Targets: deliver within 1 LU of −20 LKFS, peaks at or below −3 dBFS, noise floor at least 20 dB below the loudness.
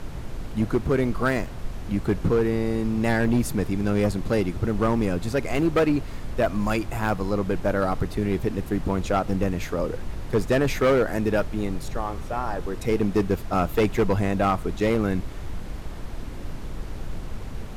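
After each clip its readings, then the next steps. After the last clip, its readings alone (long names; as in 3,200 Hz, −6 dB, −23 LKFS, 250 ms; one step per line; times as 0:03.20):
share of clipped samples 1.8%; peaks flattened at −15.0 dBFS; background noise floor −35 dBFS; target noise floor −45 dBFS; integrated loudness −25.0 LKFS; sample peak −15.0 dBFS; target loudness −20.0 LKFS
→ clipped peaks rebuilt −15 dBFS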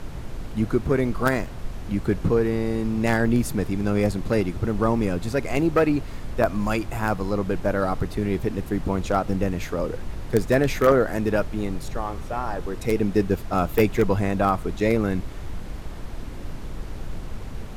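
share of clipped samples 0.0%; background noise floor −35 dBFS; target noise floor −44 dBFS
→ noise reduction from a noise print 9 dB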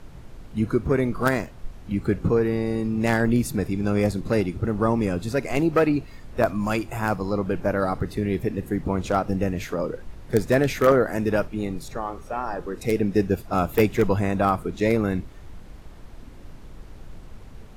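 background noise floor −43 dBFS; target noise floor −44 dBFS
→ noise reduction from a noise print 6 dB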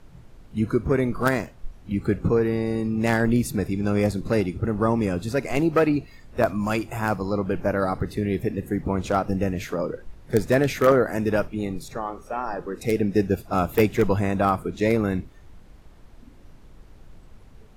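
background noise floor −48 dBFS; integrated loudness −24.0 LKFS; sample peak −5.5 dBFS; target loudness −20.0 LKFS
→ level +4 dB
brickwall limiter −3 dBFS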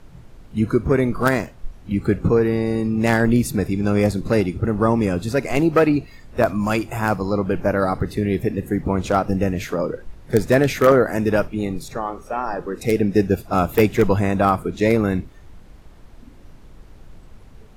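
integrated loudness −20.0 LKFS; sample peak −3.0 dBFS; background noise floor −44 dBFS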